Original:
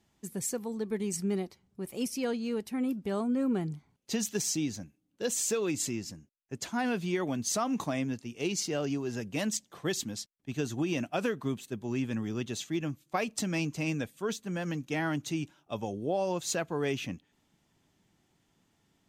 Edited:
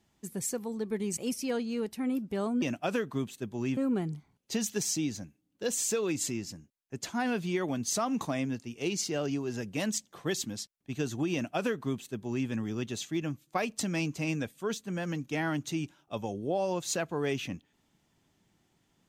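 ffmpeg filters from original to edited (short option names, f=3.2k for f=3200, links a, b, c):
-filter_complex "[0:a]asplit=4[a][b][c][d];[a]atrim=end=1.172[e];[b]atrim=start=1.908:end=3.362[f];[c]atrim=start=10.918:end=12.072[g];[d]atrim=start=3.358[h];[e][f]acrossfade=d=0.004:c1=hsin:c2=hsin[i];[i][g]acrossfade=d=0.004:c1=hsin:c2=hsin[j];[j][h]acrossfade=d=0.004:c1=hsin:c2=hsin"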